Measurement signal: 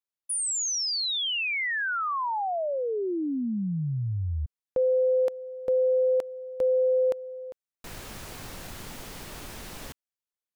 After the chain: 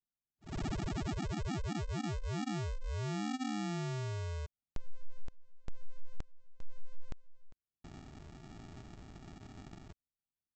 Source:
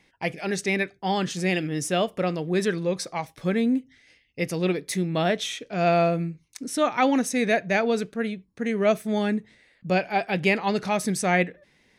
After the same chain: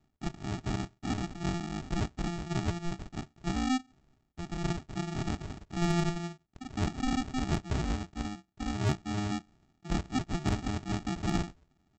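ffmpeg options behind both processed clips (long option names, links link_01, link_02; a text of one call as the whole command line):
ffmpeg -i in.wav -af "highpass=frequency=60:poles=1,aresample=16000,acrusher=samples=31:mix=1:aa=0.000001,aresample=44100,asoftclip=type=hard:threshold=-12.5dB,volume=-8dB" out.wav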